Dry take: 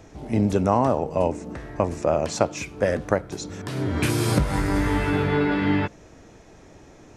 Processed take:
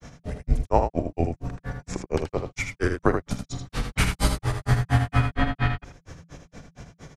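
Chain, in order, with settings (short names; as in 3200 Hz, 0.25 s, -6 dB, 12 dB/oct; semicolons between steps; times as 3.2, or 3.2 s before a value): bell 520 Hz -4 dB 0.59 oct; in parallel at +2 dB: compressor, threshold -32 dBFS, peak gain reduction 16 dB; on the sum: grains 0.125 s, grains 4.3/s, pitch spread up and down by 0 st; early reflections 45 ms -14.5 dB, 79 ms -6.5 dB; frequency shift -170 Hz; gain +2.5 dB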